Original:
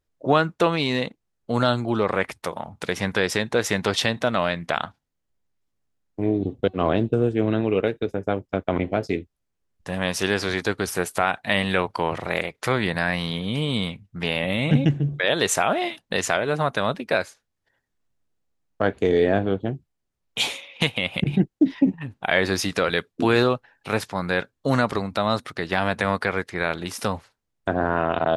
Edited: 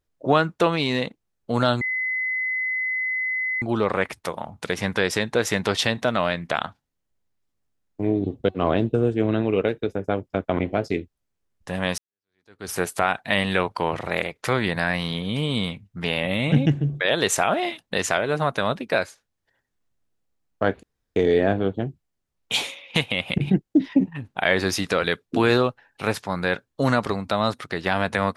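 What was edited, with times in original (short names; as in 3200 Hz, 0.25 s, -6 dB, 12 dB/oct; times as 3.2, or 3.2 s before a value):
1.81 add tone 2030 Hz -22.5 dBFS 1.81 s
10.17–10.9 fade in exponential
19.02 insert room tone 0.33 s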